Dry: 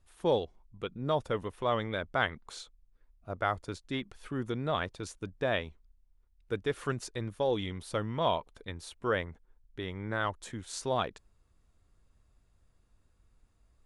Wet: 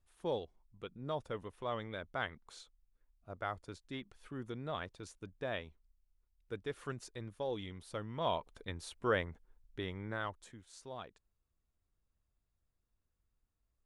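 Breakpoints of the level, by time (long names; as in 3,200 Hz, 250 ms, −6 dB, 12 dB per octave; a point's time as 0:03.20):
0:08.08 −9 dB
0:08.52 −2 dB
0:09.80 −2 dB
0:10.40 −10 dB
0:10.66 −16 dB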